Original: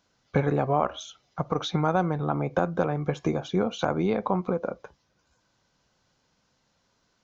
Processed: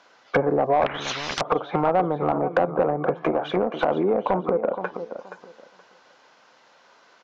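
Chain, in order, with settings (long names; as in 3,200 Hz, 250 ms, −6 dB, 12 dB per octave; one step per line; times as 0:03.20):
0:03.14–0:03.87: gain on one half-wave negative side −7 dB
high-pass filter 89 Hz
bass and treble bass −13 dB, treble −4 dB
treble cut that deepens with the level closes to 480 Hz, closed at −26.5 dBFS
dynamic equaliser 400 Hz, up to −6 dB, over −40 dBFS, Q 1.1
repeating echo 474 ms, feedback 20%, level −12 dB
mid-hump overdrive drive 21 dB, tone 1,800 Hz, clips at −12.5 dBFS
0:00.86–0:01.41: every bin compressed towards the loudest bin 10 to 1
level +6 dB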